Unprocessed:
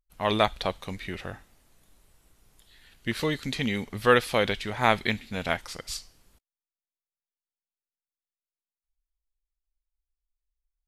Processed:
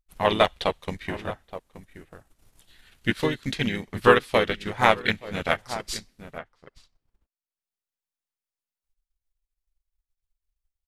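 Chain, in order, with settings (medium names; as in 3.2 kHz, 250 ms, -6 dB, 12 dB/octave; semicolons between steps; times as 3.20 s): echo from a far wall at 150 m, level -12 dB; transient shaper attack +6 dB, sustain -9 dB; harmony voices -3 st -5 dB; trim -1 dB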